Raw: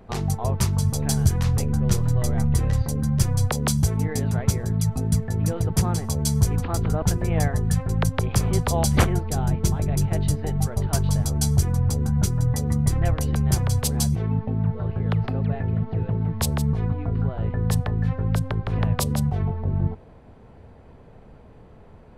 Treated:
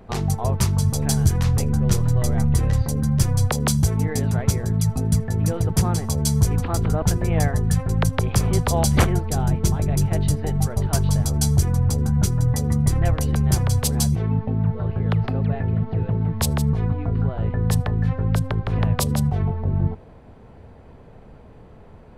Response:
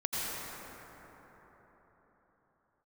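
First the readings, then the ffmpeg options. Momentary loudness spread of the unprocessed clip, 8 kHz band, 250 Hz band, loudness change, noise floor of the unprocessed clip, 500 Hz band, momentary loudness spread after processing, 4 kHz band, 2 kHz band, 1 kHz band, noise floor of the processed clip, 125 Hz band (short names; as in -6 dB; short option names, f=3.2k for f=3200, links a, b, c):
4 LU, +2.0 dB, +2.0 dB, +2.0 dB, -47 dBFS, +2.0 dB, 4 LU, +2.0 dB, +2.0 dB, +2.0 dB, -45 dBFS, +2.0 dB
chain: -filter_complex "[0:a]asoftclip=type=tanh:threshold=-7dB,asplit=2[a][b];[1:a]atrim=start_sample=2205,atrim=end_sample=3528[c];[b][c]afir=irnorm=-1:irlink=0,volume=-9dB[d];[a][d]amix=inputs=2:normalize=0"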